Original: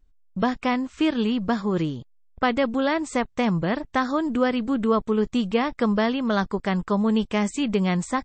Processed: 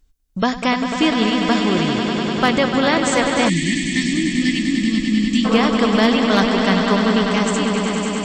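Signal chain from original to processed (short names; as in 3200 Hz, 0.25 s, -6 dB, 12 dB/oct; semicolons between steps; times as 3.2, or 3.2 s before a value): ending faded out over 1.32 s; high shelf 3100 Hz +12 dB; swelling echo 99 ms, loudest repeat 5, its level -8.5 dB; spectral gain 3.49–5.45, 370–1700 Hz -29 dB; one-sided clip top -11.5 dBFS, bottom -7.5 dBFS; gain +3.5 dB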